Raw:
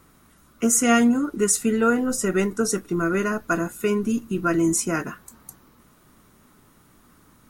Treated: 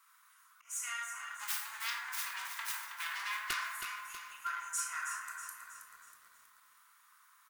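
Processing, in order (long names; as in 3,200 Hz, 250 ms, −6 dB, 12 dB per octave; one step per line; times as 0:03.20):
0:01.20–0:03.74: phase distortion by the signal itself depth 0.93 ms
downward compressor 6 to 1, threshold −23 dBFS, peak gain reduction 10 dB
convolution reverb RT60 1.5 s, pre-delay 12 ms, DRR −1.5 dB
soft clipping −16.5 dBFS, distortion −18 dB
volume swells 242 ms
Chebyshev high-pass filter 1,000 Hz, order 5
repeating echo 104 ms, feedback 38%, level −19 dB
wrap-around overflow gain 16 dB
feedback echo at a low word length 321 ms, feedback 55%, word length 9 bits, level −8 dB
level −7.5 dB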